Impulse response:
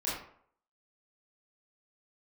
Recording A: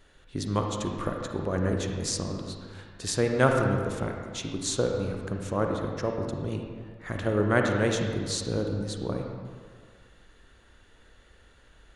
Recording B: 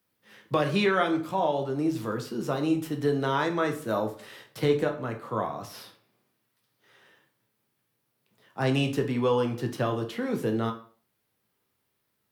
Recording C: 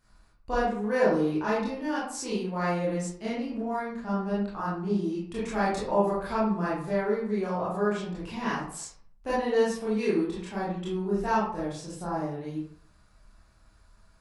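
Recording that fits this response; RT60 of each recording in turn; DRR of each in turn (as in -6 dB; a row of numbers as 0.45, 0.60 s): C; 1.9, 0.40, 0.60 s; 2.0, 4.0, -8.5 dB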